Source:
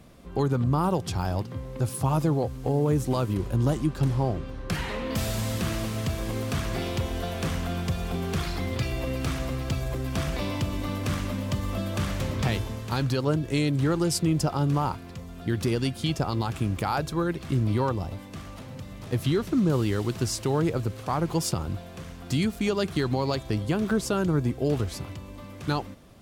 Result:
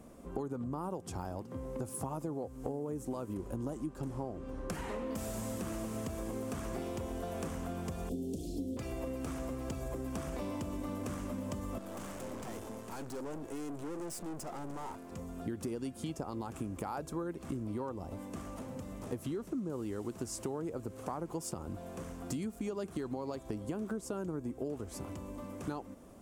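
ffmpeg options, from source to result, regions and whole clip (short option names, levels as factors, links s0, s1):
-filter_complex "[0:a]asettb=1/sr,asplit=3[s0][s1][s2];[s0]atrim=end=8.094[s3];[s1]atrim=start=8.09:end=8.77,asetpts=PTS-STARTPTS,afade=t=in:d=0.004:c=qsin,afade=t=out:st=0.676:d=0.004:c=qsin,asuperstop=centerf=1400:order=8:qfactor=0.51,equalizer=f=280:t=o:w=0.25:g=13[s4];[s2]atrim=start=8.766[s5];[s3][s4]acrossfade=d=0.004:c1=hsin:c2=qsin[s6];[s6][s5]acrossfade=d=0.004:c1=qsin:c2=hsin,asettb=1/sr,asplit=3[s7][s8][s9];[s7]atrim=end=11.784[s10];[s8]atrim=start=11.78:end=15.12,asetpts=PTS-STARTPTS,afade=t=in:d=0.004:c=qsin,afade=t=out:st=3.336:d=0.004:c=qsin,highpass=f=210:p=1,aeval=exprs='(tanh(79.4*val(0)+0.55)-tanh(0.55))/79.4':c=same[s11];[s9]atrim=start=15.116[s12];[s10][s11]acrossfade=d=0.004:c1=hsin:c2=qsin[s13];[s13][s12]acrossfade=d=0.004:c1=qsin:c2=hsin,equalizer=f=125:t=o:w=1:g=-6,equalizer=f=250:t=o:w=1:g=6,equalizer=f=500:t=o:w=1:g=4,equalizer=f=1000:t=o:w=1:g=3,equalizer=f=2000:t=o:w=1:g=-3,equalizer=f=4000:t=o:w=1:g=-9,equalizer=f=8000:t=o:w=1:g=6,acompressor=threshold=0.0282:ratio=6,volume=0.596"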